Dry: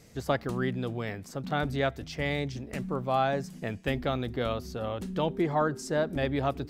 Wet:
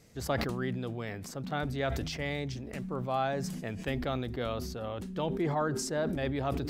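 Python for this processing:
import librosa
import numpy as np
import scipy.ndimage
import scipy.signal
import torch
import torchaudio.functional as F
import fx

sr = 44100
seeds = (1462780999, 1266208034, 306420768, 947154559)

y = fx.sustainer(x, sr, db_per_s=32.0)
y = y * 10.0 ** (-4.5 / 20.0)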